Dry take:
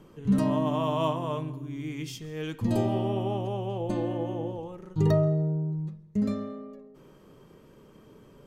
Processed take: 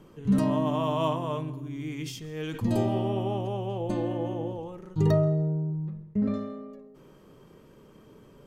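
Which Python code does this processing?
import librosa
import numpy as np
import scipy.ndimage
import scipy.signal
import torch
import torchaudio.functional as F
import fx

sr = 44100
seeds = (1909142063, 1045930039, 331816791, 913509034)

y = fx.lowpass(x, sr, hz=2200.0, slope=12, at=(5.7, 6.34))
y = fx.sustainer(y, sr, db_per_s=72.0)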